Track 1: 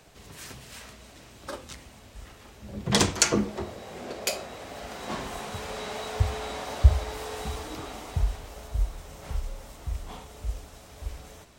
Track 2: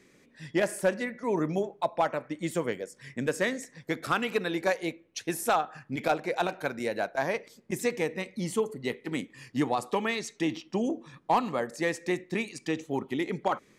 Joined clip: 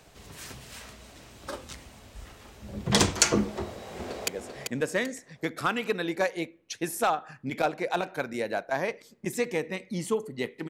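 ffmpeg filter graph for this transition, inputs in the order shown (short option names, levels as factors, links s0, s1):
-filter_complex "[0:a]apad=whole_dur=10.69,atrim=end=10.69,atrim=end=4.282[s0];[1:a]atrim=start=2.738:end=9.15[s1];[s0][s1]acrossfade=d=0.004:c1=hsin:c2=hsin,asplit=2[s2][s3];[s3]afade=t=in:st=3.6:d=0.01,afade=t=out:st=4.28:d=0.01,aecho=0:1:390|780|1170|1560:0.530884|0.159265|0.0477796|0.0143339[s4];[s2][s4]amix=inputs=2:normalize=0"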